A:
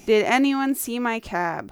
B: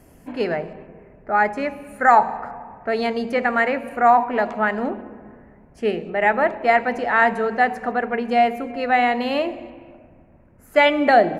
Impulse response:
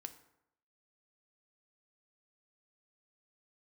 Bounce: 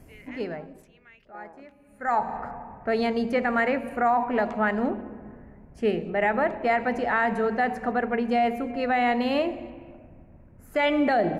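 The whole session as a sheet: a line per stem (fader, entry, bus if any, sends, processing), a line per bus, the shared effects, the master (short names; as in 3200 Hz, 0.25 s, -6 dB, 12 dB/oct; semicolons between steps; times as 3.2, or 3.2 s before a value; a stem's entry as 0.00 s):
-15.0 dB, 0.00 s, no send, LFO band-pass square 1.2 Hz 490–2000 Hz; rotary speaker horn 1.2 Hz; sustainer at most 140 dB/s
-4.0 dB, 0.00 s, no send, low shelf 230 Hz +8 dB; auto duck -21 dB, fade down 1.30 s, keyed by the first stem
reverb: off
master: limiter -14.5 dBFS, peak gain reduction 8.5 dB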